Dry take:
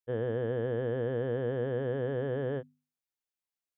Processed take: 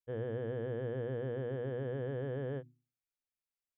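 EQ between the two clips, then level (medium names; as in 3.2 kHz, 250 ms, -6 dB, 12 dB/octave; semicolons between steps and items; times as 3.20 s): bass shelf 110 Hz +11.5 dB; peaking EQ 2.3 kHz +4.5 dB 0.3 oct; hum notches 60/120/180/240/300/360 Hz; -7.0 dB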